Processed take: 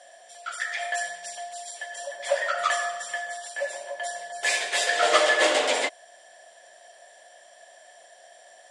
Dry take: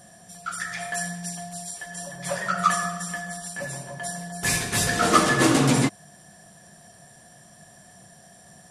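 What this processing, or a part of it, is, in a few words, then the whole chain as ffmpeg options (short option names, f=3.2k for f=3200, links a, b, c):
phone speaker on a table: -af "highpass=f=500:w=0.5412,highpass=f=500:w=1.3066,equalizer=f=590:t=q:w=4:g=9,equalizer=f=1.2k:t=q:w=4:g=-7,equalizer=f=2k:t=q:w=4:g=5,equalizer=f=3.2k:t=q:w=4:g=6,equalizer=f=5.9k:t=q:w=4:g=-5,lowpass=f=8k:w=0.5412,lowpass=f=8k:w=1.3066"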